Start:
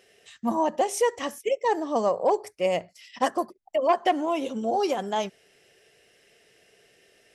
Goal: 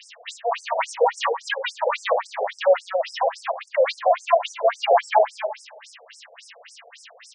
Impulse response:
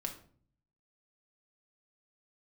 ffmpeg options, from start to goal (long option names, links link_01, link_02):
-filter_complex "[0:a]acrossover=split=3100[link_01][link_02];[link_02]acompressor=threshold=-50dB:ratio=4:attack=1:release=60[link_03];[link_01][link_03]amix=inputs=2:normalize=0,equalizer=frequency=360:width_type=o:width=0.95:gain=-14,acrossover=split=360[link_04][link_05];[link_05]acompressor=threshold=-32dB:ratio=3[link_06];[link_04][link_06]amix=inputs=2:normalize=0,acrusher=bits=9:mix=0:aa=0.000001,aeval=exprs='0.0841*(cos(1*acos(clip(val(0)/0.0841,-1,1)))-cos(1*PI/2))+0.0376*(cos(5*acos(clip(val(0)/0.0841,-1,1)))-cos(5*PI/2))':channel_layout=same,asplit=2[link_07][link_08];[link_08]adelay=231,lowpass=frequency=2600:poles=1,volume=-4.5dB,asplit=2[link_09][link_10];[link_10]adelay=231,lowpass=frequency=2600:poles=1,volume=0.24,asplit=2[link_11][link_12];[link_12]adelay=231,lowpass=frequency=2600:poles=1,volume=0.24[link_13];[link_07][link_09][link_11][link_13]amix=inputs=4:normalize=0,asplit=2[link_14][link_15];[1:a]atrim=start_sample=2205,asetrate=31752,aresample=44100,highshelf=frequency=4100:gain=-9.5[link_16];[link_15][link_16]afir=irnorm=-1:irlink=0,volume=1dB[link_17];[link_14][link_17]amix=inputs=2:normalize=0,afftfilt=real='re*between(b*sr/1024,560*pow(7100/560,0.5+0.5*sin(2*PI*3.6*pts/sr))/1.41,560*pow(7100/560,0.5+0.5*sin(2*PI*3.6*pts/sr))*1.41)':imag='im*between(b*sr/1024,560*pow(7100/560,0.5+0.5*sin(2*PI*3.6*pts/sr))/1.41,560*pow(7100/560,0.5+0.5*sin(2*PI*3.6*pts/sr))*1.41)':win_size=1024:overlap=0.75,volume=6dB"